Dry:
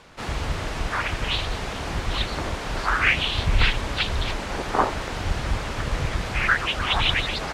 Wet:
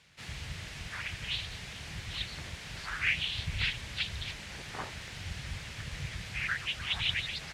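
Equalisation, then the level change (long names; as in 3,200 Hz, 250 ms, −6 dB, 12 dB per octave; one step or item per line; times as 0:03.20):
high-pass filter 61 Hz
low-shelf EQ 97 Hz −5 dB
flat-topped bell 560 Hz −13 dB 2.9 octaves
−8.0 dB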